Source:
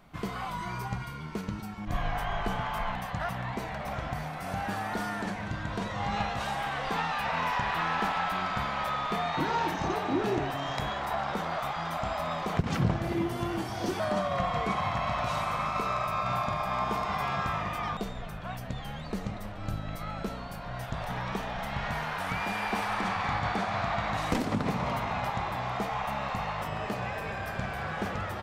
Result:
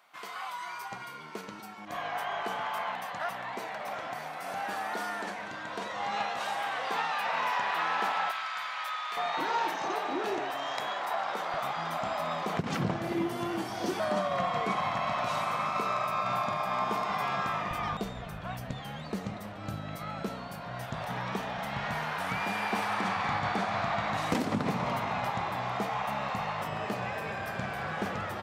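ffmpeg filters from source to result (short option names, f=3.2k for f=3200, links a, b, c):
-af "asetnsamples=n=441:p=0,asendcmd='0.92 highpass f 380;8.31 highpass f 1300;9.17 highpass f 430;11.54 highpass f 180;17.71 highpass f 55;18.71 highpass f 120',highpass=840"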